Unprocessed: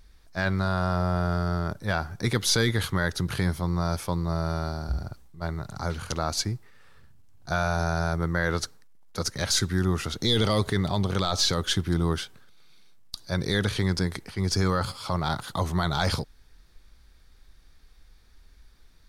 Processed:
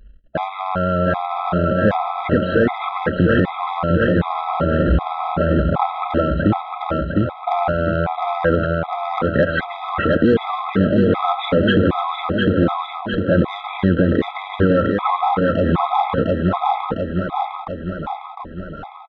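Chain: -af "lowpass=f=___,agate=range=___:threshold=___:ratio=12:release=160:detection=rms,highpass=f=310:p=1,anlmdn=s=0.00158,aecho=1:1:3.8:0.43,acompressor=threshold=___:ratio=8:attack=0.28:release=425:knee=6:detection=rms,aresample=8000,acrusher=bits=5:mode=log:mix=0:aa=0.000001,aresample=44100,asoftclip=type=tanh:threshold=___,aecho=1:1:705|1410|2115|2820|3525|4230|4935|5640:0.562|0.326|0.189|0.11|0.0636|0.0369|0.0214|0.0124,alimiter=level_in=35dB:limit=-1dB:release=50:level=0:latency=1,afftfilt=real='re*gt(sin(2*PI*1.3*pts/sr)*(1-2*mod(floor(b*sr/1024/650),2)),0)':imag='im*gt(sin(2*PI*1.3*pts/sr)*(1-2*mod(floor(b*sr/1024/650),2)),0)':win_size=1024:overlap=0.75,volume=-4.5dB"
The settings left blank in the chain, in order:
1.1k, -17dB, -52dB, -31dB, -29dB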